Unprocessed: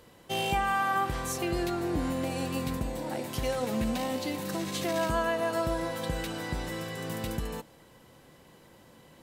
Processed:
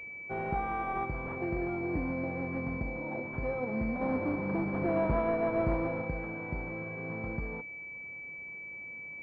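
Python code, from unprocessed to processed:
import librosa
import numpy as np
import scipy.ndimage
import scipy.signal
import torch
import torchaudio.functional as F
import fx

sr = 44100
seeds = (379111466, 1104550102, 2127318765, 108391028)

y = fx.halfwave_hold(x, sr, at=(4.01, 6.02))
y = fx.pwm(y, sr, carrier_hz=2300.0)
y = y * 10.0 ** (-3.0 / 20.0)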